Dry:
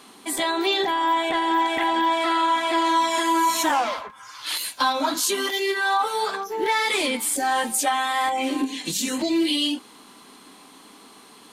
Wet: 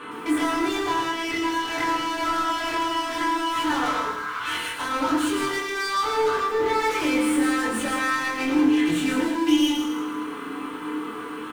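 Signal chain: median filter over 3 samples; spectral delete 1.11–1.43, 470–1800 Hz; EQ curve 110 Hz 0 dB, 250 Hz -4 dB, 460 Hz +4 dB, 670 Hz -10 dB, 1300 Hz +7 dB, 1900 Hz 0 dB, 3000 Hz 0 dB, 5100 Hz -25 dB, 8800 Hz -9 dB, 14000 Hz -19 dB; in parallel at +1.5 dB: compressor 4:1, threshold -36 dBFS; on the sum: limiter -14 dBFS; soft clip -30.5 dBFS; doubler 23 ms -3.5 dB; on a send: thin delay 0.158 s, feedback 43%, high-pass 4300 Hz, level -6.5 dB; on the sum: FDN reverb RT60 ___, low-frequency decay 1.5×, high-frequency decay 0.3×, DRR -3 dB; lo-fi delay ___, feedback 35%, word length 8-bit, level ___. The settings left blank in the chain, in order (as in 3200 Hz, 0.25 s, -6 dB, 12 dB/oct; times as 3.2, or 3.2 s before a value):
0.45 s, 0.112 s, -7 dB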